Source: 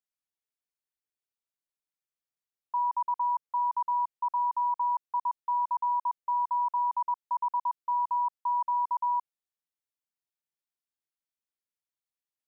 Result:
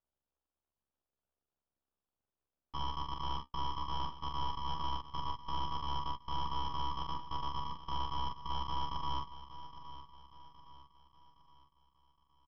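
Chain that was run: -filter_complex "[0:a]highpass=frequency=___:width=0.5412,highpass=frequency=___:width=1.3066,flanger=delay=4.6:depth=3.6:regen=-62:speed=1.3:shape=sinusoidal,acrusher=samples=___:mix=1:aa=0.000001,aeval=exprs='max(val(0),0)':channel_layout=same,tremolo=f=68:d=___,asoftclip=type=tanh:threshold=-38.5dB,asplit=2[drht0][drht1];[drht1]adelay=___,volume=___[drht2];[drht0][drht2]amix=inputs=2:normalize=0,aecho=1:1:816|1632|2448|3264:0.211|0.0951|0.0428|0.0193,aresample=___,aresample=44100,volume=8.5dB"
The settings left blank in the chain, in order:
860, 860, 21, 0.947, 43, -4dB, 11025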